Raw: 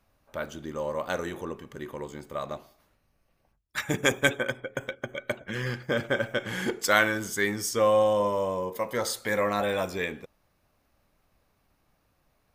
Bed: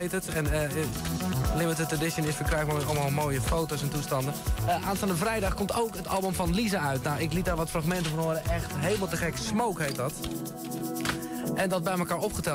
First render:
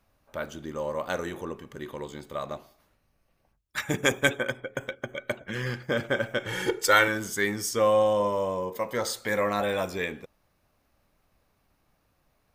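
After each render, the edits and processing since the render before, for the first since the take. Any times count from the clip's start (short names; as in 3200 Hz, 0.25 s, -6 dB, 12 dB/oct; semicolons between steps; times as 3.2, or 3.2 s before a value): 1.83–2.37 bell 3700 Hz +8 dB 0.5 oct; 6.46–7.08 comb 2.2 ms, depth 75%; 7.94–9.28 bell 11000 Hz -8.5 dB 0.26 oct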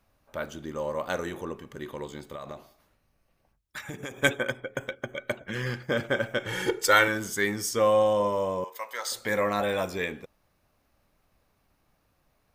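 2.33–4.19 compressor, threshold -34 dBFS; 8.64–9.12 HPF 1000 Hz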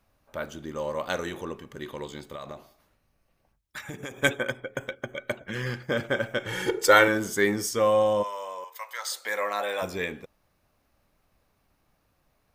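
0.68–2.47 dynamic EQ 3700 Hz, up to +5 dB, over -52 dBFS, Q 0.83; 6.73–7.67 bell 430 Hz +6 dB 2.5 oct; 8.22–9.81 HPF 1100 Hz -> 490 Hz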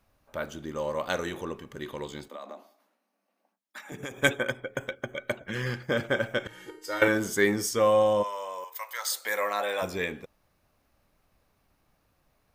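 2.28–3.92 rippled Chebyshev high-pass 190 Hz, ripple 6 dB; 6.47–7.02 resonator 310 Hz, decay 0.58 s, mix 90%; 8.53–9.52 high shelf 11000 Hz +10.5 dB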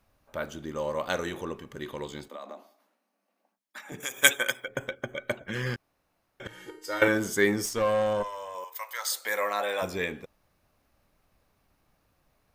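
4–4.68 tilt +4.5 dB/oct; 5.76–6.4 room tone; 7.65–8.55 tube stage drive 19 dB, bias 0.6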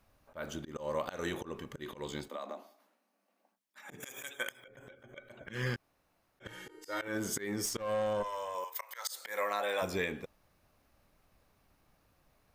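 compressor 6:1, threshold -29 dBFS, peak gain reduction 15.5 dB; auto swell 0.143 s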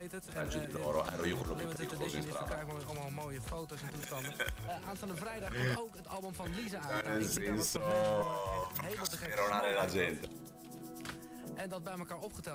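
add bed -15 dB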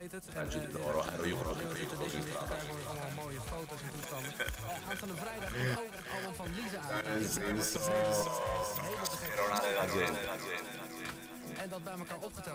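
thinning echo 0.508 s, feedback 53%, high-pass 760 Hz, level -3.5 dB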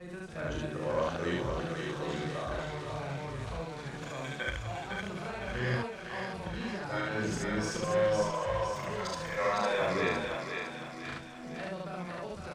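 air absorption 110 m; loudspeakers at several distances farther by 12 m -4 dB, 25 m 0 dB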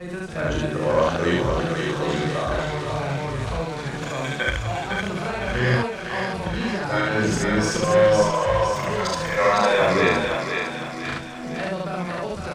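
gain +11.5 dB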